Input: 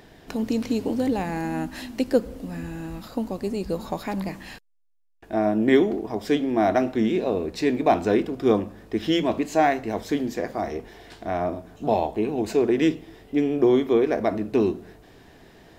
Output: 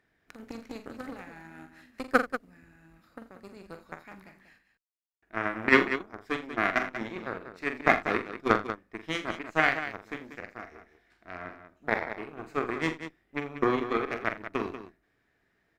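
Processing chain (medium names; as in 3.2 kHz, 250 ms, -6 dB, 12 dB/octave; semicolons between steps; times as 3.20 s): Chebyshev shaper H 3 -10 dB, 6 -40 dB, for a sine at -6 dBFS; high-order bell 1.7 kHz +9.5 dB 1.2 oct; multi-tap echo 44/83/189 ms -9/-17.5/-10.5 dB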